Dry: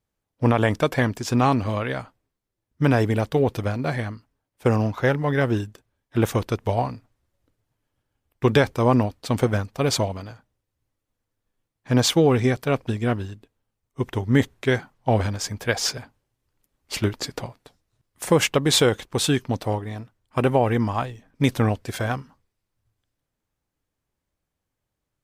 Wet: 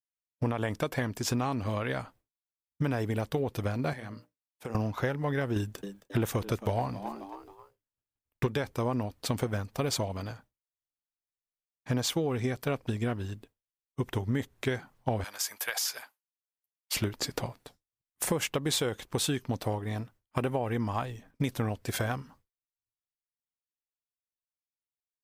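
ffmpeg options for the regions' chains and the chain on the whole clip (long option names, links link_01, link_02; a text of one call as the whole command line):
ffmpeg -i in.wav -filter_complex "[0:a]asettb=1/sr,asplit=3[link_01][link_02][link_03];[link_01]atrim=end=3.934[link_04];[link_02]atrim=start=3.93:end=4.75,asetpts=PTS-STARTPTS,afade=type=in:duration=0.004:curve=qsin,afade=type=out:start_time=0.816:duration=0.004:curve=qsin,highpass=130,bandreject=frequency=60:width_type=h:width=6,bandreject=frequency=120:width_type=h:width=6,bandreject=frequency=180:width_type=h:width=6,bandreject=frequency=240:width_type=h:width=6,bandreject=frequency=300:width_type=h:width=6,bandreject=frequency=360:width_type=h:width=6,bandreject=frequency=420:width_type=h:width=6,bandreject=frequency=480:width_type=h:width=6,bandreject=frequency=540:width_type=h:width=6,bandreject=frequency=600:width_type=h:width=6,acompressor=threshold=-37dB:ratio=4:attack=3.2:release=140:knee=1:detection=peak[link_05];[link_03]atrim=start=4.746[link_06];[link_04][link_05]acrossfade=duration=0.004:curve1=hsin:curve2=qsin[link_07];[link_07][link_06]acrossfade=duration=0.004:curve1=qsin:curve2=hsin,asettb=1/sr,asplit=3[link_08][link_09][link_10];[link_08]atrim=end=5.564[link_11];[link_09]atrim=start=5.56:end=8.47,asetpts=PTS-STARTPTS,afade=type=in:duration=0.004:curve=qsin,afade=type=out:start_time=2.906:duration=0.004:curve=qsin,acontrast=88,asplit=4[link_12][link_13][link_14][link_15];[link_13]adelay=268,afreqshift=95,volume=-19.5dB[link_16];[link_14]adelay=536,afreqshift=190,volume=-28.4dB[link_17];[link_15]adelay=804,afreqshift=285,volume=-37.2dB[link_18];[link_12][link_16][link_17][link_18]amix=inputs=4:normalize=0,atrim=end_sample=128331[link_19];[link_10]atrim=start=8.466[link_20];[link_11][link_19]acrossfade=duration=0.004:curve1=hsin:curve2=qsin[link_21];[link_21][link_20]acrossfade=duration=0.004:curve1=qsin:curve2=hsin,asettb=1/sr,asplit=3[link_22][link_23][link_24];[link_22]atrim=end=15.244[link_25];[link_23]atrim=start=15.24:end=16.95,asetpts=PTS-STARTPTS,afade=type=in:duration=0.004:curve=qsin,afade=type=out:start_time=1.706:duration=0.004:curve=qsin,highpass=970,equalizer=frequency=12000:width_type=o:width=0.54:gain=10.5,acompressor=threshold=-27dB:ratio=4:attack=3.2:release=140:knee=1:detection=peak[link_26];[link_24]atrim=start=16.946[link_27];[link_25][link_26]acrossfade=duration=0.004:curve1=hsin:curve2=qsin[link_28];[link_28][link_27]acrossfade=duration=0.004:curve1=qsin:curve2=hsin,agate=range=-33dB:threshold=-49dB:ratio=3:detection=peak,highshelf=frequency=12000:gain=9.5,acompressor=threshold=-27dB:ratio=6" out.wav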